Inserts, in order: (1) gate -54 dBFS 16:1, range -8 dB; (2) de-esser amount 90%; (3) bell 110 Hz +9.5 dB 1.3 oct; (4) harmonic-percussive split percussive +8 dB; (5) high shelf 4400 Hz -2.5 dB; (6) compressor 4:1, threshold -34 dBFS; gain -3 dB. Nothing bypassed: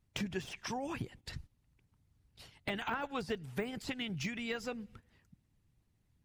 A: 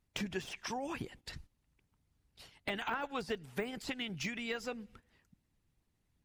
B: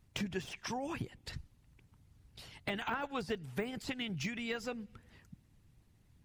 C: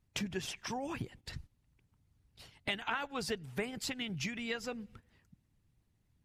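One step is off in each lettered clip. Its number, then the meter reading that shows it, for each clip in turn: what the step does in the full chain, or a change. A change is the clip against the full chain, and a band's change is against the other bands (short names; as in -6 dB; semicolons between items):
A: 3, 125 Hz band -4.5 dB; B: 1, momentary loudness spread change +5 LU; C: 2, 8 kHz band +5.5 dB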